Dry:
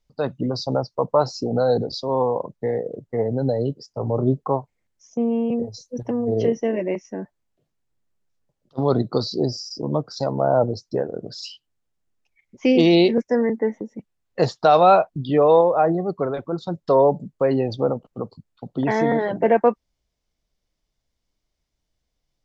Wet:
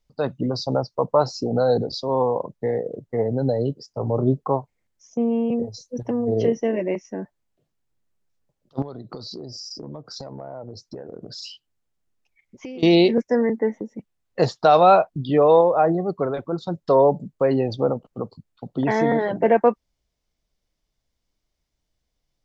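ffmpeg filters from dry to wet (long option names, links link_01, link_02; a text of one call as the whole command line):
ffmpeg -i in.wav -filter_complex "[0:a]asettb=1/sr,asplit=3[link_01][link_02][link_03];[link_01]atrim=end=8.824[link_04];[link_02]atrim=start=8.82:end=12.83,asetpts=PTS-STARTPTS,afade=type=in:duration=0.004:curve=qsin,afade=type=out:start_time=4.006:duration=0.004:curve=qsin,acompressor=threshold=-31dB:ratio=16:attack=3.2:release=140:knee=1:detection=peak[link_05];[link_03]atrim=start=12.826[link_06];[link_04][link_05]acrossfade=duration=0.004:curve1=hsin:curve2=qsin[link_07];[link_07][link_06]acrossfade=duration=0.004:curve1=qsin:curve2=hsin" out.wav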